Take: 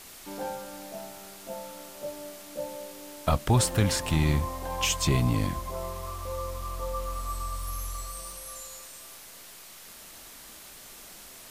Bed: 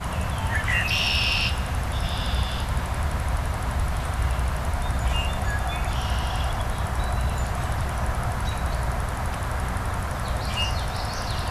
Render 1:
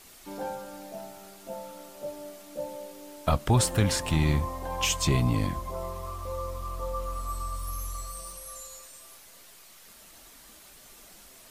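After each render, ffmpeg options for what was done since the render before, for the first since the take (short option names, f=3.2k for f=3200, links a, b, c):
-af "afftdn=nr=6:nf=-48"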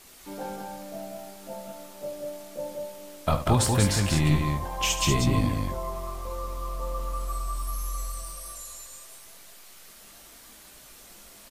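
-filter_complex "[0:a]asplit=2[a][b];[b]adelay=20,volume=-10.5dB[c];[a][c]amix=inputs=2:normalize=0,asplit=2[d][e];[e]aecho=0:1:72.89|189.5:0.282|0.631[f];[d][f]amix=inputs=2:normalize=0"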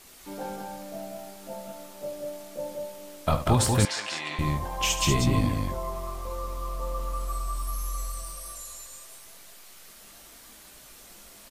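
-filter_complex "[0:a]asettb=1/sr,asplit=3[a][b][c];[a]atrim=end=3.854[d];[b]atrim=start=3.85:end=4.39,asetpts=PTS-STARTPTS,afade=t=in:d=0.004:c=qsin,afade=t=out:st=0.536:d=0.004:c=qsin,highpass=760,lowpass=5.4k[e];[c]atrim=start=4.386[f];[d][e]acrossfade=d=0.004:c1=hsin:c2=qsin[g];[g][f]acrossfade=d=0.004:c1=qsin:c2=hsin"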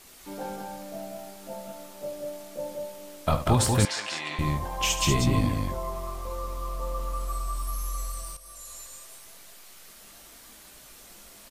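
-filter_complex "[0:a]asplit=2[a][b];[a]atrim=end=8.37,asetpts=PTS-STARTPTS,afade=t=out:st=8.366:d=0.004:c=hsin:silence=0.251189[c];[b]atrim=start=8.37,asetpts=PTS-STARTPTS,afade=t=in:d=0.41:silence=0.251189[d];[c][d]concat=n=2:v=0:a=1"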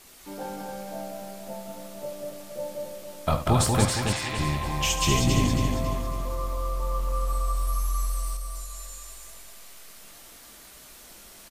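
-af "aecho=1:1:275|550|825|1100|1375:0.562|0.236|0.0992|0.0417|0.0175"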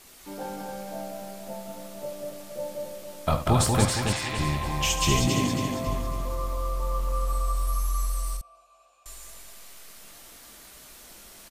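-filter_complex "[0:a]asettb=1/sr,asplit=3[a][b][c];[a]atrim=end=5.274[d];[b]atrim=start=5.27:end=5.87,asetpts=PTS-STARTPTS,afade=t=in:d=0.004:c=qsin,afade=t=out:st=0.596:d=0.004:c=qsin,highpass=140[e];[c]atrim=start=5.866[f];[d][e]acrossfade=d=0.004:c1=hsin:c2=qsin[g];[g][f]acrossfade=d=0.004:c1=qsin:c2=hsin,asettb=1/sr,asplit=3[h][i][j];[h]atrim=end=8.414[k];[i]atrim=start=8.41:end=9.06,asetpts=PTS-STARTPTS,afade=t=in:d=0.004:c=qsin,afade=t=out:st=0.646:d=0.004:c=qsin,asplit=3[l][m][n];[l]bandpass=f=730:t=q:w=8,volume=0dB[o];[m]bandpass=f=1.09k:t=q:w=8,volume=-6dB[p];[n]bandpass=f=2.44k:t=q:w=8,volume=-9dB[q];[o][p][q]amix=inputs=3:normalize=0[r];[j]atrim=start=9.056[s];[k][r]acrossfade=d=0.004:c1=hsin:c2=qsin[t];[t][s]acrossfade=d=0.004:c1=qsin:c2=hsin"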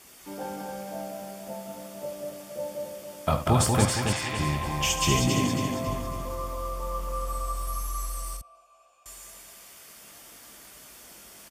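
-af "highpass=60,bandreject=f=4k:w=8.8"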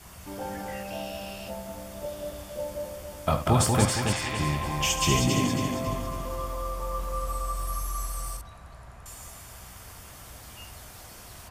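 -filter_complex "[1:a]volume=-21dB[a];[0:a][a]amix=inputs=2:normalize=0"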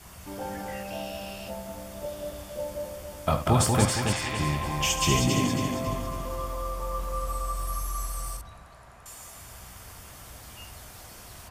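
-filter_complex "[0:a]asettb=1/sr,asplit=3[a][b][c];[a]atrim=end=8.634[d];[b]atrim=start=8.63:end=9.37,asetpts=PTS-STARTPTS,afade=t=in:d=0.004:c=qsin,afade=t=out:st=0.736:d=0.004:c=qsin,lowshelf=f=150:g=-9.5[e];[c]atrim=start=9.366[f];[d][e]acrossfade=d=0.004:c1=hsin:c2=qsin[g];[g][f]acrossfade=d=0.004:c1=qsin:c2=hsin"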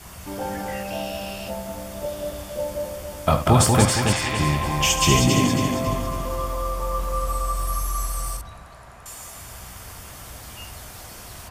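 -af "volume=6dB,alimiter=limit=-3dB:level=0:latency=1"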